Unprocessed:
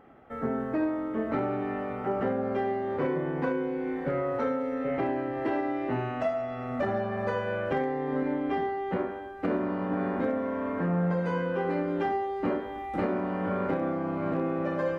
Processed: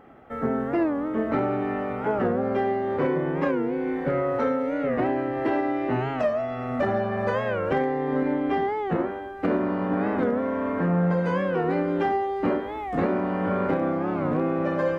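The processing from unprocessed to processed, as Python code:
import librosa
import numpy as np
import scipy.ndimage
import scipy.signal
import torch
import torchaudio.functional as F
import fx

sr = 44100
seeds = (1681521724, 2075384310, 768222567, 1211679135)

y = fx.record_warp(x, sr, rpm=45.0, depth_cents=160.0)
y = y * 10.0 ** (4.5 / 20.0)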